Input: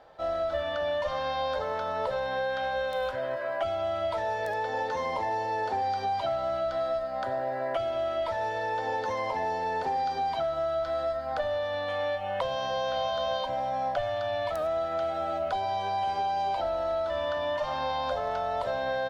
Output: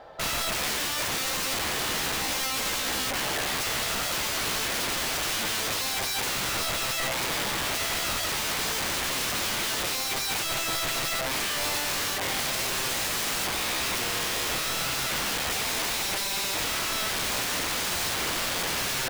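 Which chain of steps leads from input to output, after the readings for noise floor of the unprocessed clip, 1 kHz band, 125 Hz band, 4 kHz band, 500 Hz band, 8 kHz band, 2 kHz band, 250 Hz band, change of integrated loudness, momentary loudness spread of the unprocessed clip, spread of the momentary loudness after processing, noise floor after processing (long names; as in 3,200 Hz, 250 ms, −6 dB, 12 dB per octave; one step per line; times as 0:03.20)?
−33 dBFS, −4.5 dB, +4.5 dB, +13.5 dB, −8.5 dB, can't be measured, +8.0 dB, +6.0 dB, +3.5 dB, 2 LU, 0 LU, −30 dBFS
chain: pitch vibrato 5.5 Hz 15 cents
wrap-around overflow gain 31.5 dB
level +7.5 dB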